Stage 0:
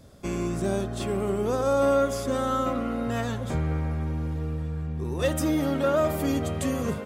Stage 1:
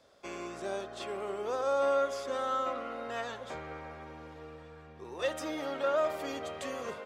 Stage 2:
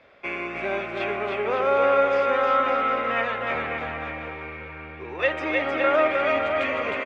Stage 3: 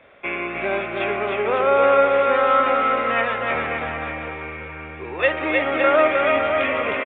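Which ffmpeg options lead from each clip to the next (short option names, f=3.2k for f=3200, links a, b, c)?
-filter_complex "[0:a]acrossover=split=410 6300:gain=0.0794 1 0.178[a][b][c];[a][b][c]amix=inputs=3:normalize=0,volume=-4dB"
-af "lowpass=f=2.3k:t=q:w=4.4,aecho=1:1:310|558|756.4|915.1|1042:0.631|0.398|0.251|0.158|0.1,volume=7dB"
-af "aresample=8000,aresample=44100,volume=4dB"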